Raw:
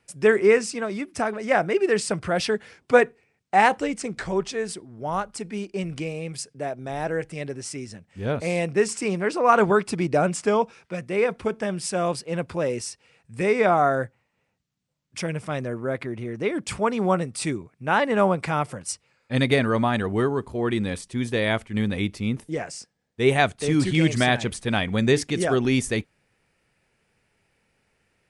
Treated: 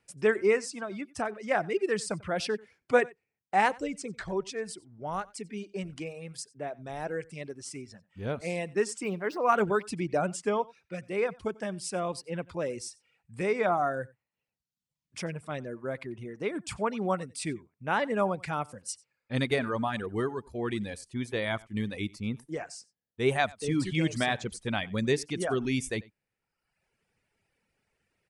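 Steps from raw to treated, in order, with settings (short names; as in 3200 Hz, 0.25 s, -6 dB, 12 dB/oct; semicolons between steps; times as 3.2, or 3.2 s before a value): 9.04–9.84 median filter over 5 samples; reverb removal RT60 0.97 s; on a send: echo 92 ms -23.5 dB; on the sum: gain -6.5 dB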